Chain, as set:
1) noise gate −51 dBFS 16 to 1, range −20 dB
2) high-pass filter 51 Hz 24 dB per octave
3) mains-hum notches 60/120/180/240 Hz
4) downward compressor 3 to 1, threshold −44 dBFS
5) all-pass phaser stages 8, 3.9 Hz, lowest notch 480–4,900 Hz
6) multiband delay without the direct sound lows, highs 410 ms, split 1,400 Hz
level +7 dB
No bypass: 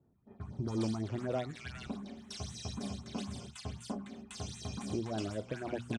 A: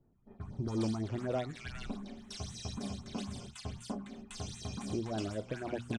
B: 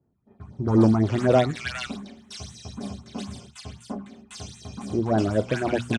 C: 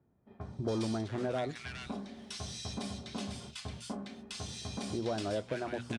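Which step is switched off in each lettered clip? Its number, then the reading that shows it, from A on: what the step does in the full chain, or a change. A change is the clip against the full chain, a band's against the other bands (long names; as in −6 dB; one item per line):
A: 2, change in crest factor −1.5 dB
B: 4, average gain reduction 7.0 dB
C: 5, change in integrated loudness +1.5 LU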